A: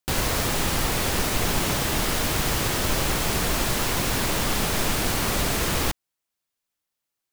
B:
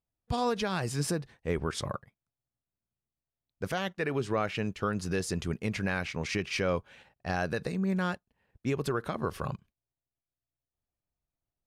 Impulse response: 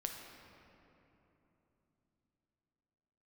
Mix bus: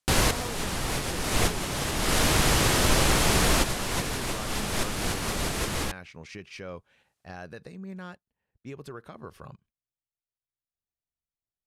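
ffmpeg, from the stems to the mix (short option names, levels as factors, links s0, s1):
-filter_complex "[0:a]lowpass=f=12000:w=0.5412,lowpass=f=12000:w=1.3066,volume=1.33[s0];[1:a]volume=0.299,asplit=2[s1][s2];[s2]apad=whole_len=323073[s3];[s0][s3]sidechaincompress=threshold=0.00501:ratio=6:attack=16:release=365[s4];[s4][s1]amix=inputs=2:normalize=0"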